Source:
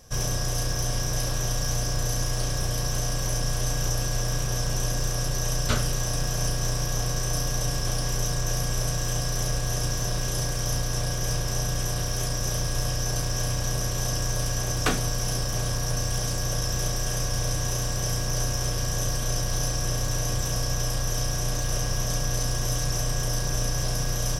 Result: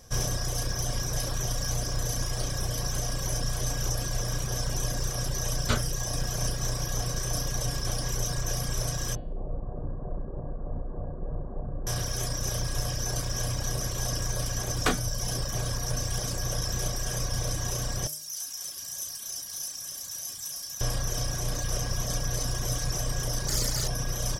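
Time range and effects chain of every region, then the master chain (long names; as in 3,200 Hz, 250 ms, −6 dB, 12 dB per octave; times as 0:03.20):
0:09.15–0:11.87: Gaussian smoothing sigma 10 samples + mains-hum notches 60/120/180 Hz
0:18.07–0:20.81: high-pass filter 85 Hz + first-order pre-emphasis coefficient 0.9 + mains-hum notches 60/120/180/240/300/360/420/480/540/600 Hz
0:23.48–0:23.88: high-shelf EQ 6,000 Hz +10 dB + highs frequency-modulated by the lows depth 0.59 ms
whole clip: reverb reduction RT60 1.1 s; notch filter 2,700 Hz, Q 16; hum removal 151.7 Hz, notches 30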